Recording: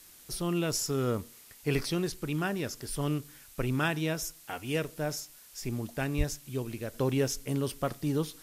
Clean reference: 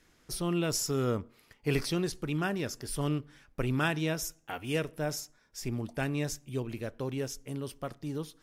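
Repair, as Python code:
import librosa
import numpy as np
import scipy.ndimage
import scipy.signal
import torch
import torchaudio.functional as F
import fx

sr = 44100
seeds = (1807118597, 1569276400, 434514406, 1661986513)

y = fx.highpass(x, sr, hz=140.0, slope=24, at=(6.17, 6.29), fade=0.02)
y = fx.noise_reduce(y, sr, print_start_s=1.17, print_end_s=1.67, reduce_db=10.0)
y = fx.fix_level(y, sr, at_s=6.94, step_db=-6.5)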